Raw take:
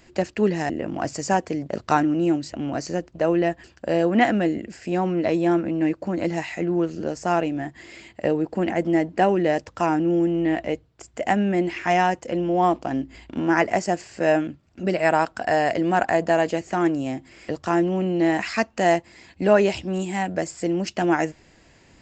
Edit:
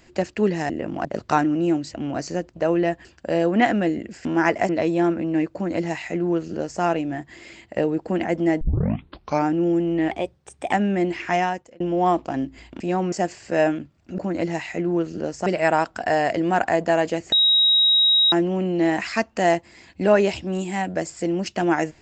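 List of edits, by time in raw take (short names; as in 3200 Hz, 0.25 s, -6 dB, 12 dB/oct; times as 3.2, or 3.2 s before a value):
1.05–1.64 cut
4.84–5.16 swap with 13.37–13.81
6.01–7.29 copy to 14.87
9.08 tape start 0.86 s
10.58–11.29 speed 116%
11.86–12.37 fade out
16.73–17.73 bleep 3810 Hz -13.5 dBFS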